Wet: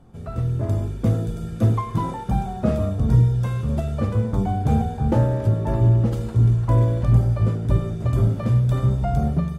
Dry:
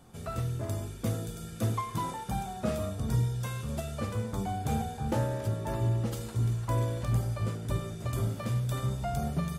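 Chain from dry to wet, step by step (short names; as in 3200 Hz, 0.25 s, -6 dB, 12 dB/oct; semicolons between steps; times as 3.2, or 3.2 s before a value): low shelf 170 Hz -7 dB; AGC gain up to 6 dB; tilt -3.5 dB/oct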